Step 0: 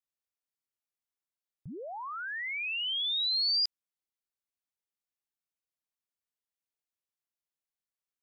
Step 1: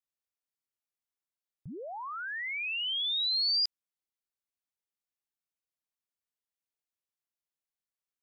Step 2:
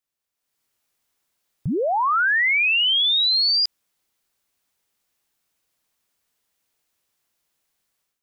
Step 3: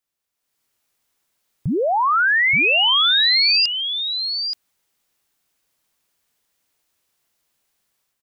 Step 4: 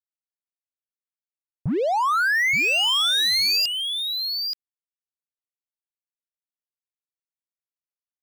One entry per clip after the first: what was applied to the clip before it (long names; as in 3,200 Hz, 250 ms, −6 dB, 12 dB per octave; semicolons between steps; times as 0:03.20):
no processing that can be heard
automatic gain control gain up to 12 dB; brickwall limiter −23 dBFS, peak gain reduction 11.5 dB; level +7 dB
single-tap delay 877 ms −7.5 dB; level +2.5 dB
soft clipping −20.5 dBFS, distortion −11 dB; power curve on the samples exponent 2; level +2.5 dB